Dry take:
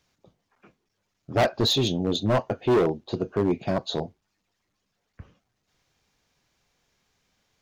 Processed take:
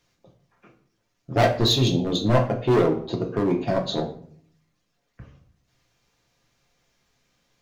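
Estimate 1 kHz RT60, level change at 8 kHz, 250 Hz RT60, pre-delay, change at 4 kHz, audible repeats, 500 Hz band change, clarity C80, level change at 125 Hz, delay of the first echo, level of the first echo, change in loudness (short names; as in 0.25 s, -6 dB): 0.50 s, +2.0 dB, 0.85 s, 4 ms, +2.0 dB, none, +2.0 dB, 14.0 dB, +5.5 dB, none, none, +2.5 dB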